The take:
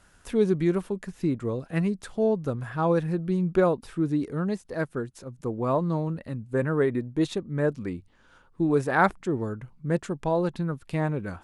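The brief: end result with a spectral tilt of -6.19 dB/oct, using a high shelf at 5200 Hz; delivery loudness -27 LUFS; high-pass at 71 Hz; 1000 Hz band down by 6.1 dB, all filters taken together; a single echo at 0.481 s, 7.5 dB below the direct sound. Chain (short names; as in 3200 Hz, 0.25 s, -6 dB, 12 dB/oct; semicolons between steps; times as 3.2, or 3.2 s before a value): HPF 71 Hz; bell 1000 Hz -8.5 dB; high shelf 5200 Hz +5 dB; echo 0.481 s -7.5 dB; gain +1 dB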